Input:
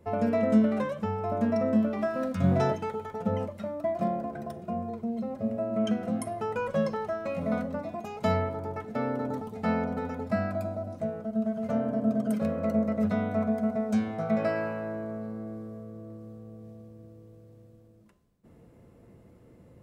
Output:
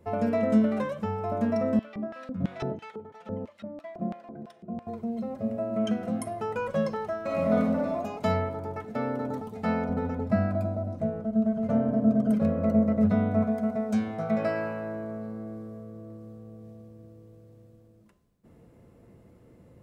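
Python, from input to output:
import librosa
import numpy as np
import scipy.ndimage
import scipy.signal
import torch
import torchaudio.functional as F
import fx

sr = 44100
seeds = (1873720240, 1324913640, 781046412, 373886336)

y = fx.filter_lfo_bandpass(x, sr, shape='square', hz=3.0, low_hz=240.0, high_hz=3000.0, q=0.99, at=(1.79, 4.87))
y = fx.reverb_throw(y, sr, start_s=7.22, length_s=0.75, rt60_s=0.91, drr_db=-2.5)
y = fx.tilt_eq(y, sr, slope=-2.0, at=(9.89, 13.44))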